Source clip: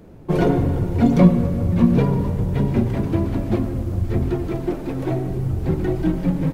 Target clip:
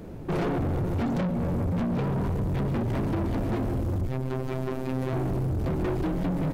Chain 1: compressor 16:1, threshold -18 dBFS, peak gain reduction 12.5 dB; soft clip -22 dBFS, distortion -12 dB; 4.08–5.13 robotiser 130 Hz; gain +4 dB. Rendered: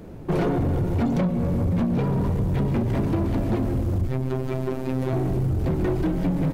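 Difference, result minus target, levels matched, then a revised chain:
soft clip: distortion -5 dB
compressor 16:1, threshold -18 dBFS, peak gain reduction 12.5 dB; soft clip -28.5 dBFS, distortion -7 dB; 4.08–5.13 robotiser 130 Hz; gain +4 dB

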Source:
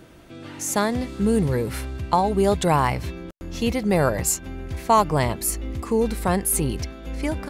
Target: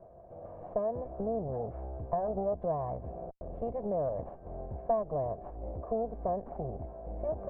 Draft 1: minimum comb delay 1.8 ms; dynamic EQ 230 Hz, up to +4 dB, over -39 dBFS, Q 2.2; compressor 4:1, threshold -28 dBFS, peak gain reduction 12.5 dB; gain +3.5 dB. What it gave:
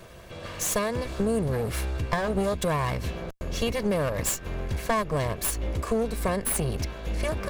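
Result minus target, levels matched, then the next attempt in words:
1000 Hz band -2.5 dB
minimum comb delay 1.8 ms; dynamic EQ 230 Hz, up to +4 dB, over -39 dBFS, Q 2.2; compressor 4:1, threshold -28 dBFS, peak gain reduction 12.5 dB; ladder low-pass 770 Hz, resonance 70%; gain +3.5 dB

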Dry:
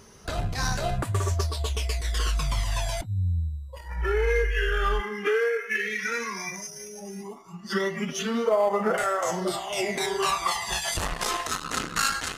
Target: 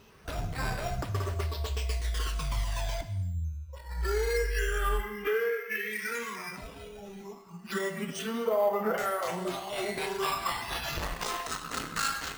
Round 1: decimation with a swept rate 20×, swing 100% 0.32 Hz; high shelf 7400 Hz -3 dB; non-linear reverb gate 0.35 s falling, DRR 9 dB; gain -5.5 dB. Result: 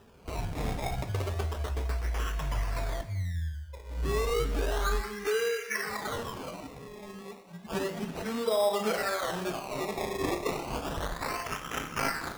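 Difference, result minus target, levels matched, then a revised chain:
decimation with a swept rate: distortion +8 dB
decimation with a swept rate 5×, swing 100% 0.32 Hz; high shelf 7400 Hz -3 dB; non-linear reverb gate 0.35 s falling, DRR 9 dB; gain -5.5 dB

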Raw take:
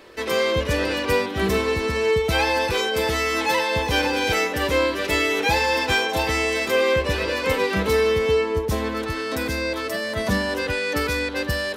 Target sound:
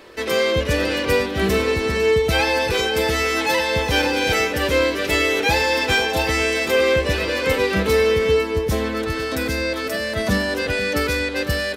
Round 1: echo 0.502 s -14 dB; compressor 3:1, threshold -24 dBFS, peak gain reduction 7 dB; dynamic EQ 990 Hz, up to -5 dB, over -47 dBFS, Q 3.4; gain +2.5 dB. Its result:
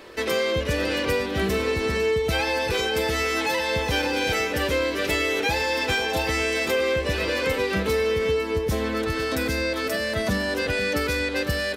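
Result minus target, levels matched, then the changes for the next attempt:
compressor: peak gain reduction +7 dB
remove: compressor 3:1, threshold -24 dBFS, peak gain reduction 7 dB

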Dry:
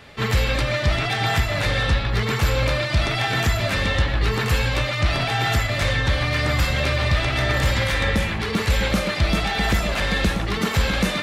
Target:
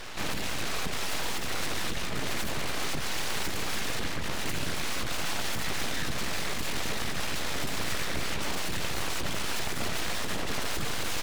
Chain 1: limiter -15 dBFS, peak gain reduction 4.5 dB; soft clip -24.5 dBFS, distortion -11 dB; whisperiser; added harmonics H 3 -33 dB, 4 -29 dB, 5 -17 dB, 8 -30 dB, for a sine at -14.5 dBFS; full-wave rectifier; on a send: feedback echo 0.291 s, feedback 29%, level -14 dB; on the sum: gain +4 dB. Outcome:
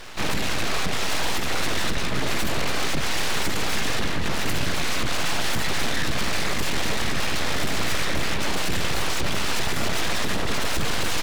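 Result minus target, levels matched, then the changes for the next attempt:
soft clip: distortion -6 dB
change: soft clip -36 dBFS, distortion -5 dB

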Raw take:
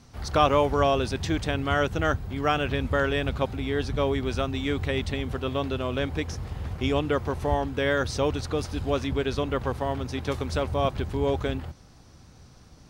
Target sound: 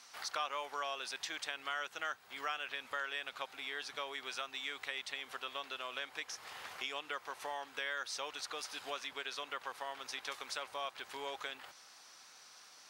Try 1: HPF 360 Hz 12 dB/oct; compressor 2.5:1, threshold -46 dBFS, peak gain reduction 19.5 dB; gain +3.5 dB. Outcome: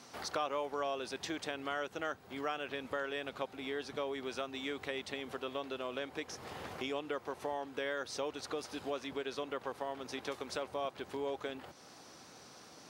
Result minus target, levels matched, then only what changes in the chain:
500 Hz band +8.0 dB
change: HPF 1200 Hz 12 dB/oct

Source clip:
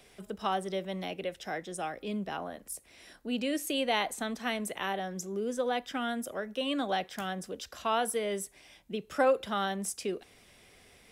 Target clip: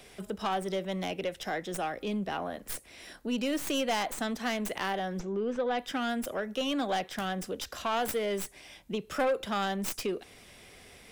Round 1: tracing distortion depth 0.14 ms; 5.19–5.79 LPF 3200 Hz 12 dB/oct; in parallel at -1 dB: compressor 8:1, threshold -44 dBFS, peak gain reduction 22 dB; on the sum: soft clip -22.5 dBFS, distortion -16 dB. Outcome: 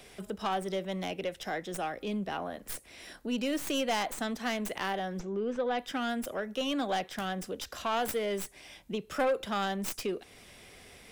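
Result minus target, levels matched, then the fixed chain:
compressor: peak gain reduction +6 dB
tracing distortion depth 0.14 ms; 5.19–5.79 LPF 3200 Hz 12 dB/oct; in parallel at -1 dB: compressor 8:1, threshold -37 dBFS, peak gain reduction 16 dB; on the sum: soft clip -22.5 dBFS, distortion -15 dB

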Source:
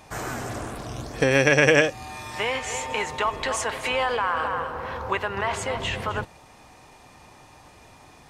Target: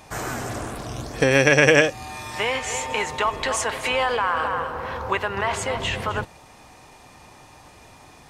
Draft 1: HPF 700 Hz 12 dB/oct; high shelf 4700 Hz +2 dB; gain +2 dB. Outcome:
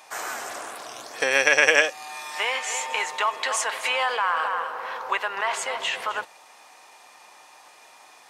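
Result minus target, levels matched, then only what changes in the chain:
500 Hz band -5.0 dB
remove: HPF 700 Hz 12 dB/oct

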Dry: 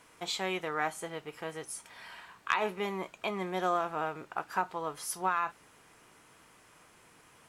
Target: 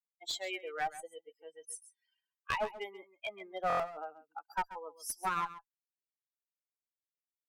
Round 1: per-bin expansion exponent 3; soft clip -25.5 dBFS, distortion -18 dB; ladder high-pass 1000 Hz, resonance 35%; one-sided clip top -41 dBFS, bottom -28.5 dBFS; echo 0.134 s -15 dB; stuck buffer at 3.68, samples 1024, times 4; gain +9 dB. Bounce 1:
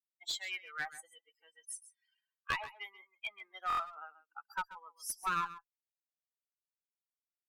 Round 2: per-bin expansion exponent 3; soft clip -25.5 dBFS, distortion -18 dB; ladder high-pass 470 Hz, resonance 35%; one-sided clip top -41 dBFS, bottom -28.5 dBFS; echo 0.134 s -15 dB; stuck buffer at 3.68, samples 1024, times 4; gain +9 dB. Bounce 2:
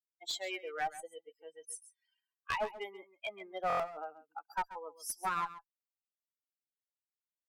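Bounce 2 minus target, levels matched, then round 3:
soft clip: distortion +12 dB
per-bin expansion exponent 3; soft clip -17.5 dBFS, distortion -31 dB; ladder high-pass 470 Hz, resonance 35%; one-sided clip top -41 dBFS, bottom -28.5 dBFS; echo 0.134 s -15 dB; stuck buffer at 3.68, samples 1024, times 4; gain +9 dB

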